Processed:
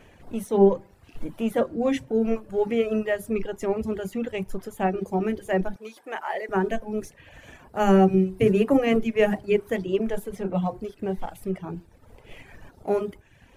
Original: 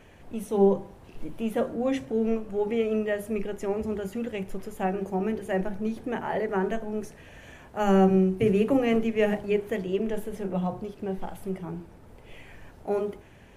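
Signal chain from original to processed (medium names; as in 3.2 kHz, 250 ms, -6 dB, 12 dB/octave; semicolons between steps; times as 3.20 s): in parallel at -7.5 dB: crossover distortion -47.5 dBFS; on the sum: reverb removal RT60 0.8 s; 5.76–6.49 s: high-pass 710 Hz 12 dB/octave; trim +1 dB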